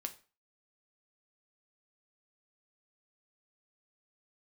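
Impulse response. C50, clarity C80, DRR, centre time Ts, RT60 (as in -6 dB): 15.5 dB, 20.5 dB, 5.5 dB, 7 ms, 0.35 s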